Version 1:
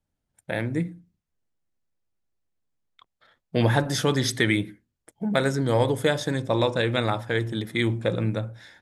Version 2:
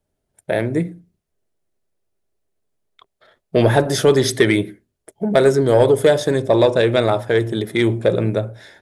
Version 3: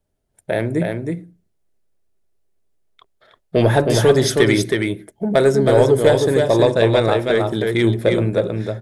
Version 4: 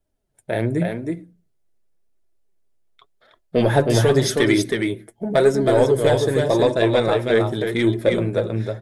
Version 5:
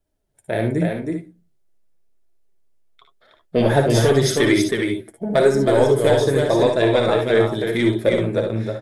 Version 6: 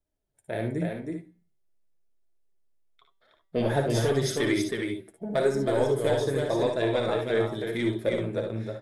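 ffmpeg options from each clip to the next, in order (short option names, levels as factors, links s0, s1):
-af "equalizer=f=400:t=o:w=0.33:g=12,equalizer=f=630:t=o:w=0.33:g=9,equalizer=f=10000:t=o:w=0.33:g=5,acontrast=41,volume=0.891"
-af "lowshelf=f=71:g=5.5,aecho=1:1:319:0.631,volume=0.891"
-af "flanger=delay=2.9:depth=5.9:regen=43:speed=0.88:shape=sinusoidal,volume=1.19"
-af "aecho=1:1:58|71:0.422|0.335"
-af "bandreject=f=193.1:t=h:w=4,bandreject=f=386.2:t=h:w=4,bandreject=f=579.3:t=h:w=4,bandreject=f=772.4:t=h:w=4,bandreject=f=965.5:t=h:w=4,bandreject=f=1158.6:t=h:w=4,bandreject=f=1351.7:t=h:w=4,bandreject=f=1544.8:t=h:w=4,bandreject=f=1737.9:t=h:w=4,bandreject=f=1931:t=h:w=4,bandreject=f=2124.1:t=h:w=4,bandreject=f=2317.2:t=h:w=4,bandreject=f=2510.3:t=h:w=4,bandreject=f=2703.4:t=h:w=4,bandreject=f=2896.5:t=h:w=4,bandreject=f=3089.6:t=h:w=4,bandreject=f=3282.7:t=h:w=4,bandreject=f=3475.8:t=h:w=4,bandreject=f=3668.9:t=h:w=4,bandreject=f=3862:t=h:w=4,bandreject=f=4055.1:t=h:w=4,bandreject=f=4248.2:t=h:w=4,bandreject=f=4441.3:t=h:w=4,bandreject=f=4634.4:t=h:w=4,bandreject=f=4827.5:t=h:w=4,bandreject=f=5020.6:t=h:w=4,bandreject=f=5213.7:t=h:w=4,volume=0.355"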